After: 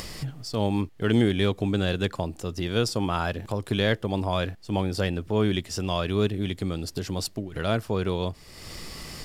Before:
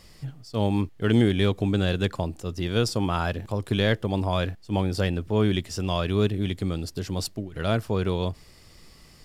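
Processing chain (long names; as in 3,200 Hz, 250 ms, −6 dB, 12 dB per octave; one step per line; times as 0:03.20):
low-shelf EQ 150 Hz −4 dB
upward compression, threshold −25 dBFS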